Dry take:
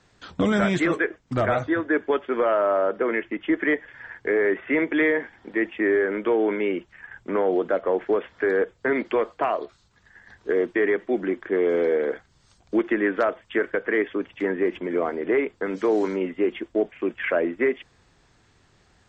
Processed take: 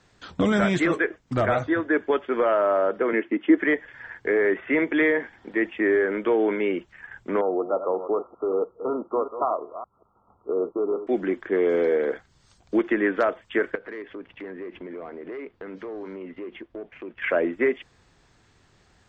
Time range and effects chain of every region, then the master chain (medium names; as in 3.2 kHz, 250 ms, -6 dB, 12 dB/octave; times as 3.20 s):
3.13–3.58 s: resonant high-pass 260 Hz, resonance Q 2.1 + distance through air 130 m
7.41–11.07 s: chunks repeated in reverse 187 ms, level -10 dB + brick-wall FIR low-pass 1.4 kHz + tilt EQ +2.5 dB/octave
13.75–17.22 s: waveshaping leveller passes 1 + compression 3:1, threshold -38 dBFS + distance through air 220 m
whole clip: none